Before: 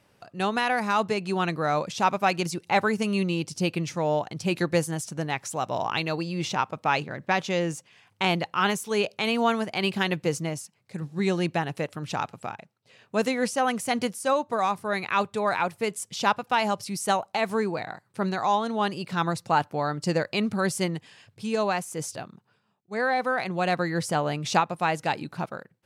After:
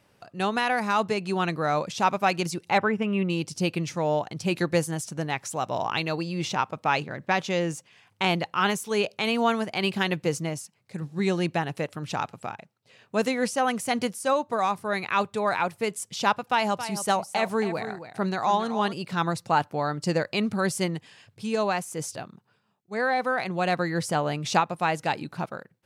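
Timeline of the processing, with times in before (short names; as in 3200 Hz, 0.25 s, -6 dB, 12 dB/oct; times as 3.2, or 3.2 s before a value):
2.78–3.3 polynomial smoothing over 25 samples
16.46–18.93 echo 0.274 s -11 dB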